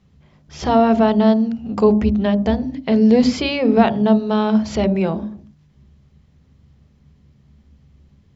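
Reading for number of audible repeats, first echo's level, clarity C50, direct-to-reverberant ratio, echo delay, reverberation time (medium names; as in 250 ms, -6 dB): no echo, no echo, 17.5 dB, 11.0 dB, no echo, 0.50 s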